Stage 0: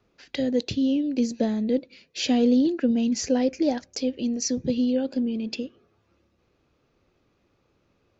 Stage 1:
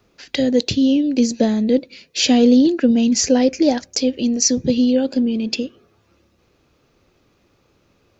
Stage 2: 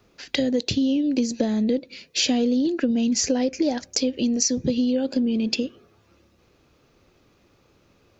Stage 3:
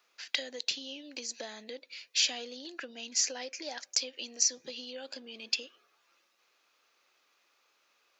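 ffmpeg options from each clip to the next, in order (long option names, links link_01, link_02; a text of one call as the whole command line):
ffmpeg -i in.wav -af "highshelf=frequency=4800:gain=7.5,volume=7.5dB" out.wav
ffmpeg -i in.wav -af "acompressor=threshold=-19dB:ratio=6" out.wav
ffmpeg -i in.wav -af "highpass=1100,volume=-4dB" out.wav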